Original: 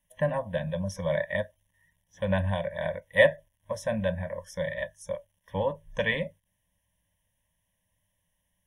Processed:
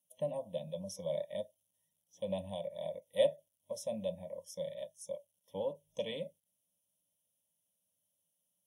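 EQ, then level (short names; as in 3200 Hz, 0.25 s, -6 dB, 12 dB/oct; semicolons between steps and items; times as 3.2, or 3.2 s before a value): HPF 240 Hz 12 dB/oct; Butterworth band-stop 1500 Hz, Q 0.59; high shelf 6100 Hz +6.5 dB; -6.5 dB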